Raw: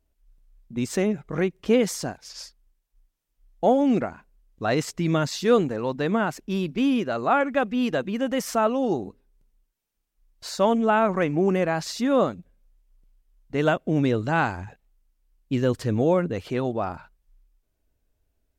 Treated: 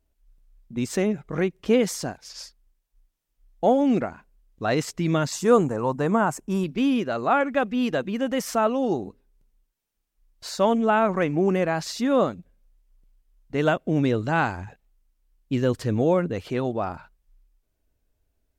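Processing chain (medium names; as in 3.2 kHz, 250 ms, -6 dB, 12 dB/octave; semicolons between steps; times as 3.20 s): 5.32–6.64 s: graphic EQ 125/1000/2000/4000/8000 Hz +4/+7/-3/-11/+11 dB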